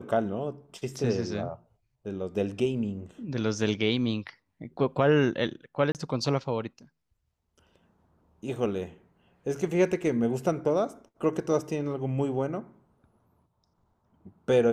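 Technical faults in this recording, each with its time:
5.92–5.95 s: dropout 28 ms

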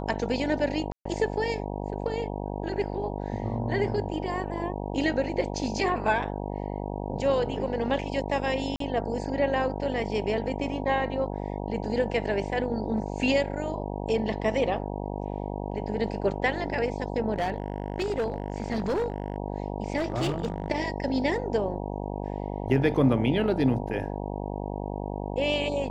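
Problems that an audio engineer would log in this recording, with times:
buzz 50 Hz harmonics 19 -33 dBFS
0.92–1.05 s: dropout 134 ms
8.76–8.80 s: dropout 43 ms
17.33–19.36 s: clipped -23 dBFS
19.97–20.70 s: clipped -23 dBFS

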